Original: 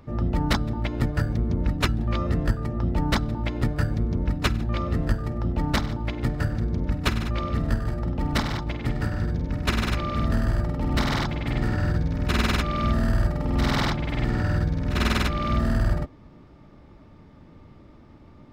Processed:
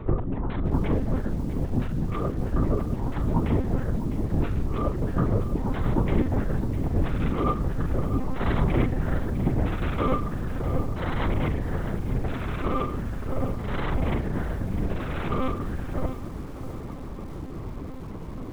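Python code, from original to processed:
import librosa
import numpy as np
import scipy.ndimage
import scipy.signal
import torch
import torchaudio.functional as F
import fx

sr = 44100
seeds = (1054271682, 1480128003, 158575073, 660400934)

y = fx.lowpass(x, sr, hz=1300.0, slope=6)
y = fx.over_compress(y, sr, threshold_db=-32.0, ratio=-1.0)
y = fx.doubler(y, sr, ms=42.0, db=-9.0)
y = fx.lpc_monotone(y, sr, seeds[0], pitch_hz=260.0, order=10)
y = fx.echo_crushed(y, sr, ms=654, feedback_pct=35, bits=8, wet_db=-12.0)
y = F.gain(torch.from_numpy(y), 6.0).numpy()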